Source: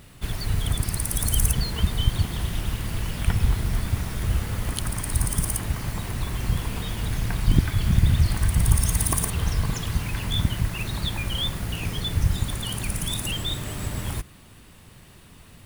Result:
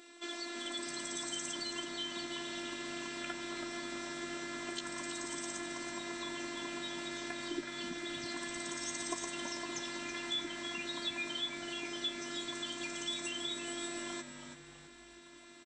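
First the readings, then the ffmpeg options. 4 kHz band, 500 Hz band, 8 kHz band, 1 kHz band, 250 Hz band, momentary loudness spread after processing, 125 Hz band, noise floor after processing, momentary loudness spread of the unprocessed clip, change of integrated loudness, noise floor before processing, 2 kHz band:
−7.0 dB, −4.5 dB, −12.0 dB, −7.5 dB, −10.0 dB, 4 LU, −35.5 dB, −56 dBFS, 8 LU, −13.5 dB, −49 dBFS, −5.0 dB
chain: -filter_complex "[0:a]afftfilt=real='re*between(b*sr/4096,190,8500)':imag='im*between(b*sr/4096,190,8500)':win_size=4096:overlap=0.75,acompressor=threshold=-37dB:ratio=2,afftfilt=real='hypot(re,im)*cos(PI*b)':imag='0':win_size=512:overlap=0.75,asplit=2[link_01][link_02];[link_02]adelay=14,volume=-7dB[link_03];[link_01][link_03]amix=inputs=2:normalize=0,asplit=5[link_04][link_05][link_06][link_07][link_08];[link_05]adelay=327,afreqshift=-98,volume=-9dB[link_09];[link_06]adelay=654,afreqshift=-196,volume=-17.9dB[link_10];[link_07]adelay=981,afreqshift=-294,volume=-26.7dB[link_11];[link_08]adelay=1308,afreqshift=-392,volume=-35.6dB[link_12];[link_04][link_09][link_10][link_11][link_12]amix=inputs=5:normalize=0"

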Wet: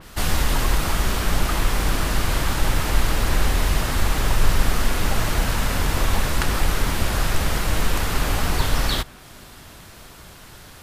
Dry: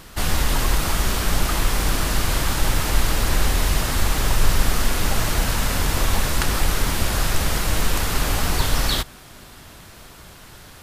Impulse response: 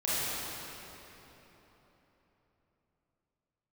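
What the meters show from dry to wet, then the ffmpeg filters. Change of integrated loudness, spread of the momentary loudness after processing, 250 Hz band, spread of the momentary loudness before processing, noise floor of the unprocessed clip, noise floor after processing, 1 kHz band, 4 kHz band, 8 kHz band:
−1.0 dB, 20 LU, 0.0 dB, 1 LU, −44 dBFS, −44 dBFS, 0.0 dB, −2.0 dB, −3.5 dB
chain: -af "adynamicequalizer=threshold=0.0112:dfrequency=3600:dqfactor=0.7:tfrequency=3600:tqfactor=0.7:attack=5:release=100:ratio=0.375:range=2:mode=cutabove:tftype=highshelf"

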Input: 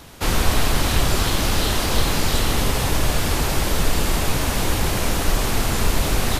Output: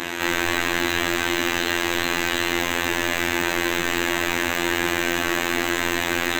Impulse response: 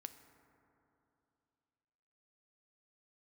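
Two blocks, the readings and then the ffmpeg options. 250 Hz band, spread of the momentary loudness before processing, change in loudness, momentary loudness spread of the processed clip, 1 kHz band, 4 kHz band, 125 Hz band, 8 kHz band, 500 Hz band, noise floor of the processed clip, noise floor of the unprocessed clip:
+0.5 dB, 2 LU, −0.5 dB, 1 LU, −0.5 dB, −0.5 dB, −14.0 dB, −4.0 dB, −0.5 dB, −26 dBFS, −23 dBFS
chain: -filter_complex "[0:a]asplit=2[link_01][link_02];[link_02]highpass=frequency=720:poles=1,volume=39dB,asoftclip=type=tanh:threshold=-4dB[link_03];[link_01][link_03]amix=inputs=2:normalize=0,lowpass=frequency=4800:poles=1,volume=-6dB,afftfilt=real='hypot(re,im)*cos(PI*b)':imag='0':win_size=2048:overlap=0.75,superequalizer=6b=3.55:11b=2.24:12b=1.58:14b=0.398:16b=0.251,volume=-10.5dB"

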